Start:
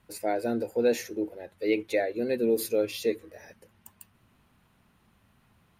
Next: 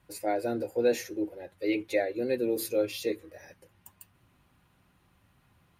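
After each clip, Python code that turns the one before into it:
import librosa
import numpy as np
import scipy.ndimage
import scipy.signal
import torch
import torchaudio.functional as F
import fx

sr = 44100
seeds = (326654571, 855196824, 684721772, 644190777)

y = fx.notch_comb(x, sr, f0_hz=220.0)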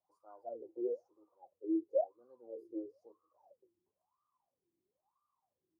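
y = scipy.signal.sosfilt(scipy.signal.ellip(3, 1.0, 40, [1200.0, 5100.0], 'bandstop', fs=sr, output='sos'), x)
y = fx.low_shelf(y, sr, hz=87.0, db=9.0)
y = fx.wah_lfo(y, sr, hz=1.0, low_hz=330.0, high_hz=1200.0, q=22.0)
y = F.gain(torch.from_numpy(y), 1.0).numpy()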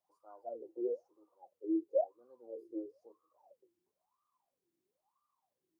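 y = fx.peak_eq(x, sr, hz=67.0, db=-10.0, octaves=1.4)
y = F.gain(torch.from_numpy(y), 1.0).numpy()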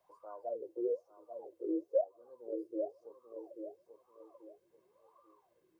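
y = x + 0.49 * np.pad(x, (int(1.9 * sr / 1000.0), 0))[:len(x)]
y = fx.echo_feedback(y, sr, ms=838, feedback_pct=19, wet_db=-10)
y = fx.band_squash(y, sr, depth_pct=40)
y = F.gain(torch.from_numpy(y), 1.5).numpy()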